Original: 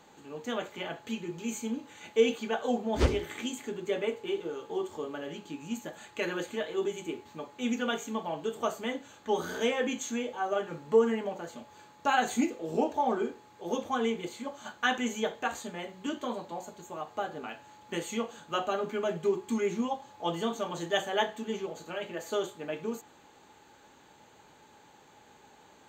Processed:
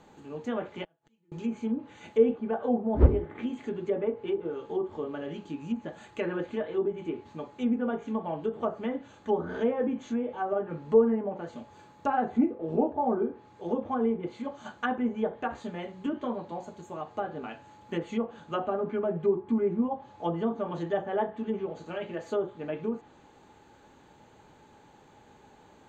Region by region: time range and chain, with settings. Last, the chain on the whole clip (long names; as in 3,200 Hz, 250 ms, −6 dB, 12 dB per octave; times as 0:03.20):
0:00.84–0:01.32: gate with flip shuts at −36 dBFS, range −37 dB + comb filter 6.2 ms, depth 63%
whole clip: spectral tilt −2 dB per octave; treble cut that deepens with the level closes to 1,100 Hz, closed at −25 dBFS